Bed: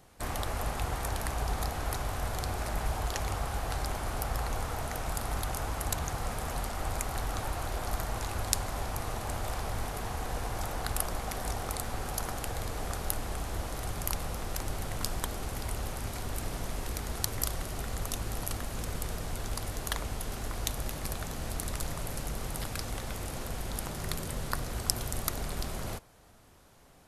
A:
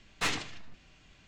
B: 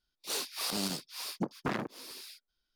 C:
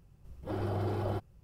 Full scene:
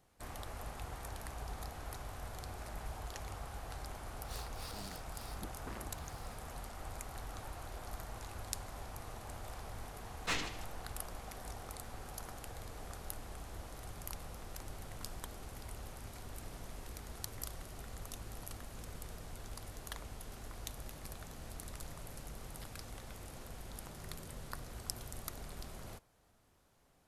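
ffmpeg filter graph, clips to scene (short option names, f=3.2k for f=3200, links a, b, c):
-filter_complex "[0:a]volume=-12dB[a];[1:a]aecho=1:1:146:0.15[b];[2:a]atrim=end=2.75,asetpts=PTS-STARTPTS,volume=-15.5dB,afade=t=in:d=0.004:c=hsin,afade=t=out:st=2.746:d=0.004:c=hsin,adelay=176841S[c];[b]atrim=end=1.27,asetpts=PTS-STARTPTS,volume=-5.5dB,afade=t=in:d=0.004:c=hsin,afade=t=out:st=1.266:d=0.004:c=hsin,adelay=10060[d];[a][c][d]amix=inputs=3:normalize=0"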